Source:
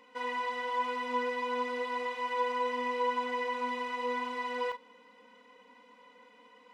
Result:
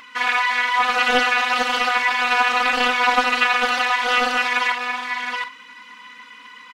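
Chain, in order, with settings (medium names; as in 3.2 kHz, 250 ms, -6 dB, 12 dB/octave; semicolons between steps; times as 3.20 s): FFT filter 290 Hz 0 dB, 720 Hz -17 dB, 1.1 kHz +13 dB; upward compressor, threshold -57 dBFS; peaking EQ 97 Hz +14.5 dB 0.38 oct; delay 720 ms -5 dB; loudspeaker Doppler distortion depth 0.56 ms; trim +6.5 dB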